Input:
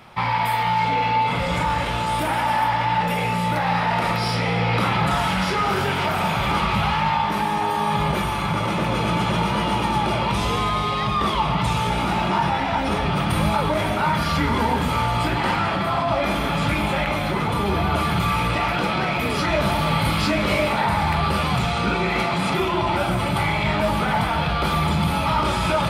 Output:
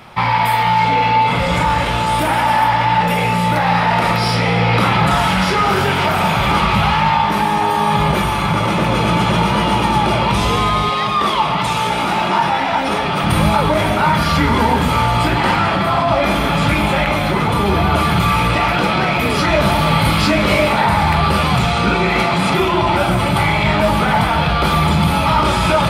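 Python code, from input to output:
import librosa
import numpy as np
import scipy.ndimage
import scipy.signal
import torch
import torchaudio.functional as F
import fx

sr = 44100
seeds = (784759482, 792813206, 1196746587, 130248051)

y = fx.highpass(x, sr, hz=300.0, slope=6, at=(10.89, 13.24))
y = y * librosa.db_to_amplitude(6.5)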